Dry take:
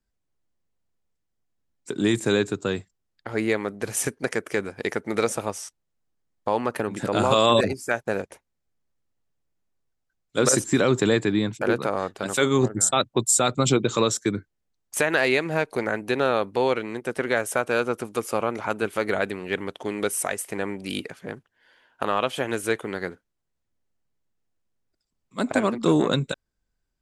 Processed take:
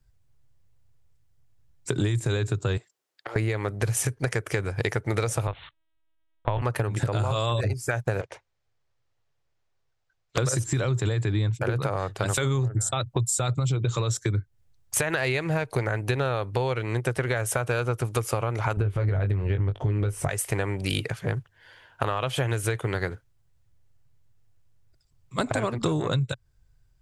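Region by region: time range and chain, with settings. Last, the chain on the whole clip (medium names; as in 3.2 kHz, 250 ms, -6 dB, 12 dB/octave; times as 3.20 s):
2.77–3.36 s: compression 2.5:1, threshold -40 dBFS + high-pass 310 Hz 24 dB/octave + loudspeaker Doppler distortion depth 0.11 ms
5.47–6.62 s: LPC vocoder at 8 kHz pitch kept + tilt EQ +2 dB/octave
8.21–10.38 s: three-band isolator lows -15 dB, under 330 Hz, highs -21 dB, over 6.7 kHz + loudspeaker Doppler distortion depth 0.49 ms
18.77–20.29 s: RIAA curve playback + doubling 20 ms -7 dB
whole clip: resonant low shelf 160 Hz +9.5 dB, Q 3; peak limiter -13 dBFS; compression 12:1, threshold -29 dBFS; trim +7 dB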